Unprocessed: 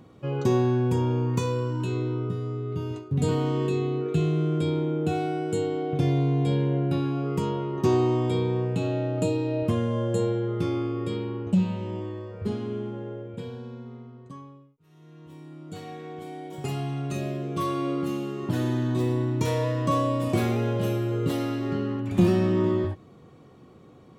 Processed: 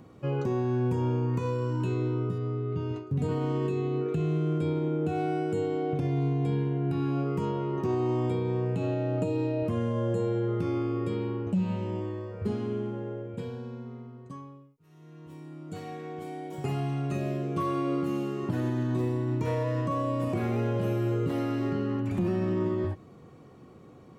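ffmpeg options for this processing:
ffmpeg -i in.wav -filter_complex "[0:a]asettb=1/sr,asplit=3[link_01][link_02][link_03];[link_01]atrim=end=2.384[link_04];[link_02]atrim=start=2.38:end=3.07,asetpts=PTS-STARTPTS,afade=type=in:duration=0.004:curve=qsin,afade=type=out:start_time=0.686:duration=0.004:curve=qsin,lowpass=4300[link_05];[link_03]atrim=start=3.066[link_06];[link_04][link_05]acrossfade=duration=0.004:curve1=hsin:curve2=qsin[link_07];[link_07][link_06]acrossfade=duration=0.004:curve1=qsin:curve2=hsin,asettb=1/sr,asplit=3[link_08][link_09][link_10];[link_08]atrim=end=6.104[link_11];[link_09]atrim=start=6.1:end=7.08,asetpts=PTS-STARTPTS,afade=type=in:duration=0.004:curve=qsin,afade=type=out:start_time=0.976:duration=0.004:curve=qsin,bandreject=frequency=560:width=7.5[link_12];[link_10]atrim=start=7.076[link_13];[link_11][link_12]acrossfade=duration=0.004:curve1=hsin:curve2=qsin[link_14];[link_14][link_13]acrossfade=duration=0.004:curve1=qsin:curve2=hsin,acrossover=split=2900[link_15][link_16];[link_16]acompressor=threshold=-51dB:ratio=4:attack=1:release=60[link_17];[link_15][link_17]amix=inputs=2:normalize=0,equalizer=frequency=3500:width_type=o:width=0.42:gain=-5,alimiter=limit=-20.5dB:level=0:latency=1:release=143" out.wav

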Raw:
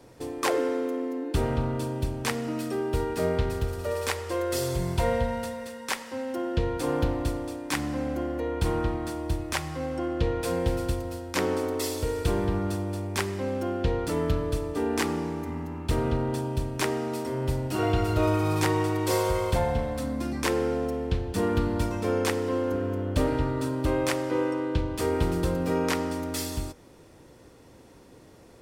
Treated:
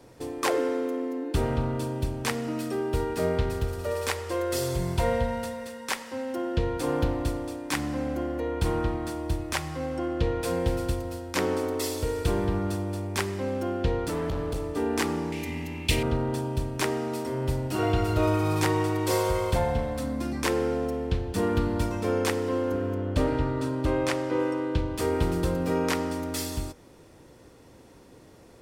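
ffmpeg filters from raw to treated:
ffmpeg -i in.wav -filter_complex "[0:a]asettb=1/sr,asplit=3[link_01][link_02][link_03];[link_01]atrim=end=14.094[link_04];[link_02]atrim=start=14.09:end=14.76,asetpts=PTS-STARTPTS,afade=type=in:duration=0.004:curve=qsin,afade=type=out:start_time=0.666:duration=0.004:curve=qsin,asoftclip=type=hard:threshold=-26dB[link_05];[link_03]atrim=start=14.756[link_06];[link_04][link_05]acrossfade=duration=0.004:curve1=hsin:curve2=qsin[link_07];[link_07][link_06]acrossfade=duration=0.004:curve1=qsin:curve2=hsin,asettb=1/sr,asplit=3[link_08][link_09][link_10];[link_08]atrim=end=15.324[link_11];[link_09]atrim=start=15.32:end=16.03,asetpts=PTS-STARTPTS,afade=type=in:duration=0.004:curve=qsin,afade=type=out:start_time=0.706:duration=0.004:curve=qsin,highshelf=frequency=1800:width_type=q:width=3:gain=9.5[link_12];[link_10]atrim=start=16.026[link_13];[link_11][link_12]acrossfade=duration=0.004:curve1=hsin:curve2=qsin[link_14];[link_14][link_13]acrossfade=duration=0.004:curve1=qsin:curve2=hsin,asettb=1/sr,asplit=3[link_15][link_16][link_17];[link_15]atrim=end=22.944[link_18];[link_16]atrim=start=22.94:end=24.4,asetpts=PTS-STARTPTS,afade=type=in:duration=0.004:curve=qsin,afade=type=out:start_time=1.456:duration=0.004:curve=qsin,highshelf=frequency=9900:gain=-10.5[link_19];[link_17]atrim=start=24.396[link_20];[link_18][link_19]acrossfade=duration=0.004:curve1=hsin:curve2=qsin[link_21];[link_21][link_20]acrossfade=duration=0.004:curve1=qsin:curve2=hsin" out.wav

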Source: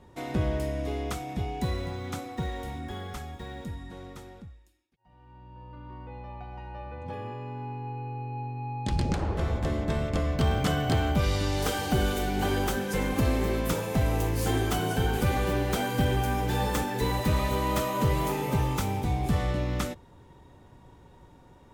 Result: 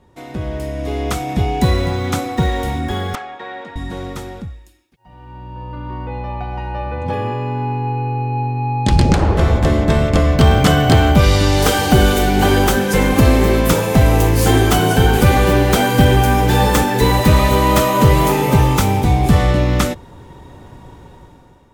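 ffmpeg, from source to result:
ffmpeg -i in.wav -filter_complex "[0:a]asettb=1/sr,asplit=3[link_01][link_02][link_03];[link_01]atrim=end=3.154[link_04];[link_02]atrim=start=3.15:end=3.76,asetpts=PTS-STARTPTS,afade=type=in:duration=0.004:curve=qsin,afade=type=out:start_time=0.606:duration=0.004:curve=qsin,highpass=570,lowpass=2500[link_05];[link_03]atrim=start=3.756[link_06];[link_04][link_05]acrossfade=duration=0.004:curve1=hsin:curve2=qsin[link_07];[link_07][link_06]acrossfade=duration=0.004:curve1=qsin:curve2=hsin,dynaudnorm=framelen=390:gausssize=5:maxgain=14.5dB,volume=1.5dB" out.wav

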